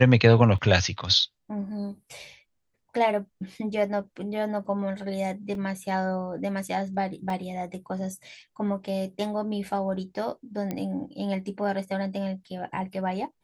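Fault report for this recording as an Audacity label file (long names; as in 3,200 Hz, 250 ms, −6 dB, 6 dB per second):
0.580000	0.580000	drop-out 3.4 ms
5.550000	5.550000	drop-out 2.1 ms
7.300000	7.300000	drop-out 2.1 ms
10.710000	10.710000	click −17 dBFS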